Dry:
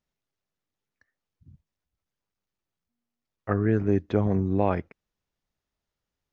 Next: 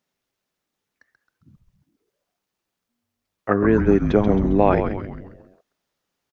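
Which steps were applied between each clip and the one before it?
high-pass filter 190 Hz 12 dB per octave
on a send: echo with shifted repeats 134 ms, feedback 51%, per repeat −140 Hz, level −6.5 dB
on the sum: level +8 dB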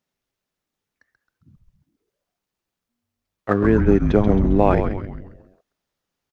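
low-shelf EQ 100 Hz +8.5 dB
in parallel at −8.5 dB: dead-zone distortion −27.5 dBFS
on the sum: level −3 dB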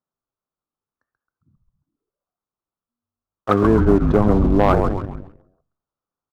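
high shelf with overshoot 1,600 Hz −8.5 dB, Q 3
leveller curve on the samples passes 2
on a send at −17 dB: convolution reverb RT60 0.45 s, pre-delay 3 ms
on the sum: level −5 dB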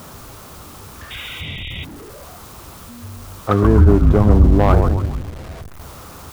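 converter with a step at zero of −29 dBFS
sound drawn into the spectrogram noise, 0:01.10–0:01.85, 1,900–3,800 Hz −31 dBFS
parametric band 73 Hz +12.5 dB 1.3 octaves
level −1.5 dB

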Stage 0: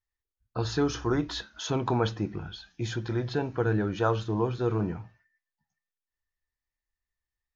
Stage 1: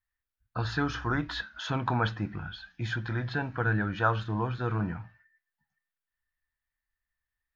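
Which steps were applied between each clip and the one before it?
graphic EQ with 15 bands 400 Hz −11 dB, 1,600 Hz +8 dB, 6,300 Hz −11 dB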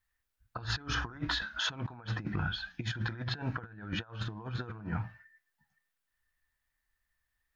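compressor whose output falls as the input rises −36 dBFS, ratio −0.5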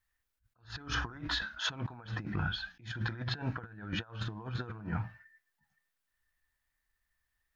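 level that may rise only so fast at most 190 dB per second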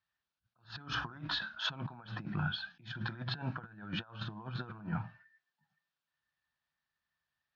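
loudspeaker in its box 150–4,800 Hz, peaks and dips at 150 Hz +6 dB, 300 Hz −5 dB, 450 Hz −8 dB, 2,000 Hz −9 dB

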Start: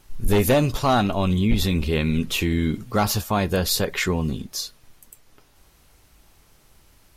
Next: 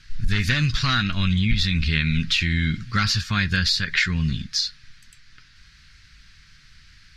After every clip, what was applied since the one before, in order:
drawn EQ curve 160 Hz 0 dB, 470 Hz −23 dB, 810 Hz −24 dB, 1,600 Hz +9 dB, 3,000 Hz +4 dB, 4,600 Hz +11 dB, 15,000 Hz −21 dB
downward compressor, threshold −20 dBFS, peak gain reduction 8.5 dB
high-shelf EQ 6,000 Hz −9.5 dB
level +4.5 dB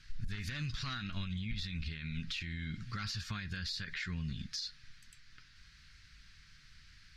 downward compressor, threshold −25 dBFS, peak gain reduction 9.5 dB
brickwall limiter −21.5 dBFS, peak gain reduction 8.5 dB
level −8 dB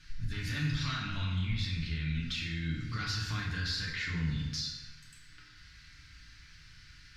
feedback delay network reverb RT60 1.3 s, low-frequency decay 0.85×, high-frequency decay 0.6×, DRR −4 dB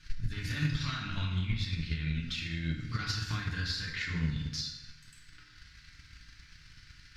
transient designer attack +8 dB, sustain −2 dB
level −1 dB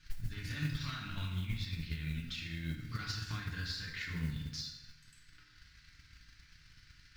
noise that follows the level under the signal 27 dB
level −5.5 dB

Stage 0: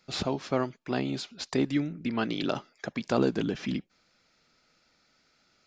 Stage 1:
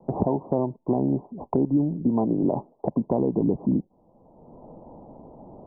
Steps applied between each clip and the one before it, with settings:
Butterworth low-pass 1,000 Hz 96 dB per octave
brickwall limiter −20.5 dBFS, peak gain reduction 8 dB
multiband upward and downward compressor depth 70%
level +8.5 dB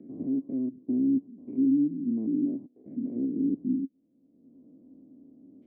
spectrum averaged block by block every 100 ms
formant filter i
parametric band 73 Hz +4 dB 1 octave
level +3.5 dB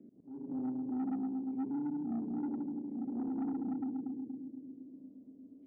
spring reverb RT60 3.5 s, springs 34/39 ms, chirp 65 ms, DRR −2.5 dB
soft clipping −22.5 dBFS, distortion −13 dB
volume swells 323 ms
level −9 dB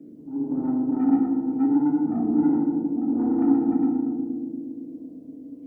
feedback delay network reverb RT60 0.94 s, low-frequency decay 1.05×, high-frequency decay 0.75×, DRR −3.5 dB
level +8.5 dB

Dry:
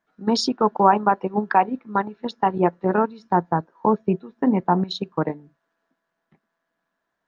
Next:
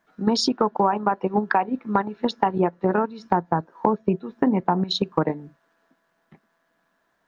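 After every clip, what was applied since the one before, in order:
downward compressor 6 to 1, threshold −26 dBFS, peak gain reduction 15.5 dB
level +8.5 dB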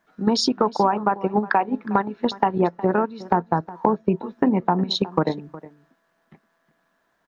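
single-tap delay 363 ms −18 dB
level +1 dB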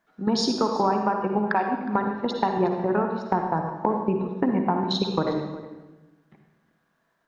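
convolution reverb RT60 1.1 s, pre-delay 49 ms, DRR 3.5 dB
level −4.5 dB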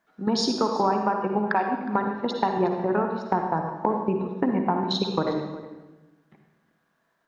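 low-shelf EQ 110 Hz −5.5 dB

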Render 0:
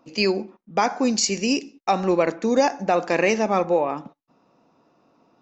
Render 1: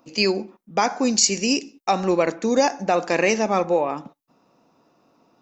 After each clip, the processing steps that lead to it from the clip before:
high-shelf EQ 6,700 Hz +10.5 dB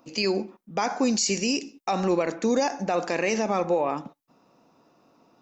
brickwall limiter −15 dBFS, peak gain reduction 10.5 dB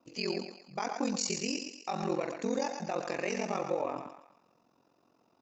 feedback echo with a high-pass in the loop 120 ms, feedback 45%, high-pass 520 Hz, level −6 dB
ring modulation 22 Hz
level −6.5 dB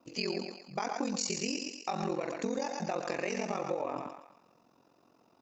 downward compressor, threshold −33 dBFS, peak gain reduction 7 dB
level +3.5 dB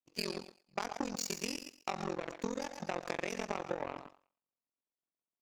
power curve on the samples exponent 2
level +3 dB

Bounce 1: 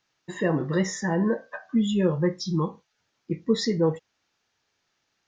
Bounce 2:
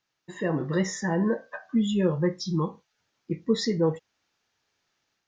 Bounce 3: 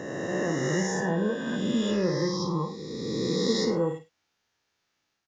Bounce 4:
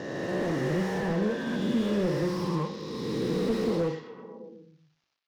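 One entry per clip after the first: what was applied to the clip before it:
automatic gain control gain up to 5 dB; level −6 dB
peak hold with a rise ahead of every peak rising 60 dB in 2.42 s; multi-tap delay 53/103 ms −9.5/−17 dB; level −5.5 dB
variable-slope delta modulation 32 kbit/s; echo through a band-pass that steps 121 ms, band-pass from 3,600 Hz, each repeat −0.7 octaves, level −6 dB; slew-rate limiting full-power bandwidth 30 Hz

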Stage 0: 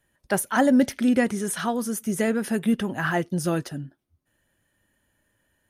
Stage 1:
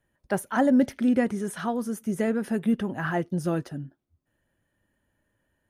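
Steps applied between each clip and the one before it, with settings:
high-shelf EQ 2,100 Hz −9.5 dB
level −1.5 dB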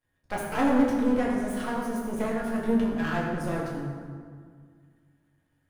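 half-wave rectification
convolution reverb RT60 1.9 s, pre-delay 5 ms, DRR −4.5 dB
level −3 dB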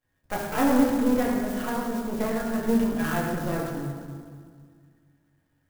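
converter with an unsteady clock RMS 0.039 ms
level +1.5 dB

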